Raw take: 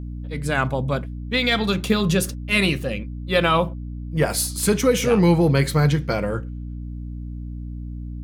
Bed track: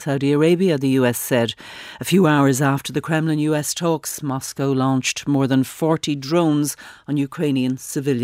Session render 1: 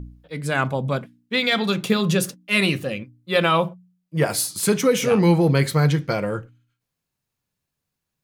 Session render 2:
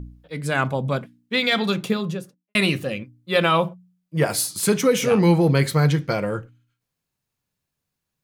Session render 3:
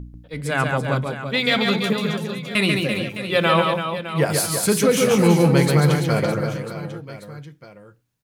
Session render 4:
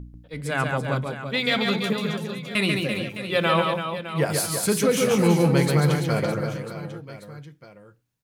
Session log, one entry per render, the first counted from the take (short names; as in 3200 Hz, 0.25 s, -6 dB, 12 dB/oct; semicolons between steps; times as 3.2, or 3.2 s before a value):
de-hum 60 Hz, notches 5
1.61–2.55 studio fade out
reverse bouncing-ball echo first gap 0.14 s, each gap 1.4×, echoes 5
gain -3.5 dB